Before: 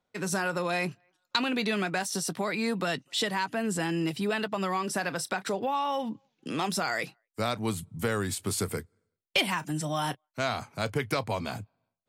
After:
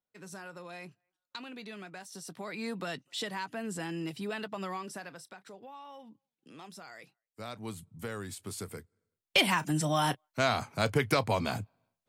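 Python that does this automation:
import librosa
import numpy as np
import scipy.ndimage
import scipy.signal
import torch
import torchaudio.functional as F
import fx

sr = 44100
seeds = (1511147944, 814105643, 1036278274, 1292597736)

y = fx.gain(x, sr, db=fx.line((2.04, -16.0), (2.65, -7.5), (4.71, -7.5), (5.36, -19.0), (7.05, -19.0), (7.63, -10.0), (8.79, -10.0), (9.45, 2.0)))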